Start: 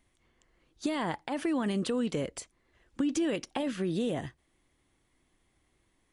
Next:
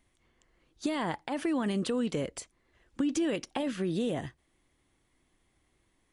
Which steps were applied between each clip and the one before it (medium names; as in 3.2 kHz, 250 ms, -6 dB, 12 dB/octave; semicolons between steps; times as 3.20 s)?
no audible change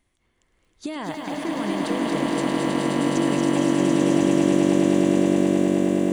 echo with a slow build-up 105 ms, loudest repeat 8, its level -5 dB; bit-crushed delay 231 ms, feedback 80%, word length 9-bit, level -4 dB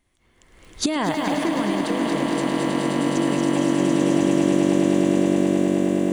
recorder AGC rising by 27 dB/s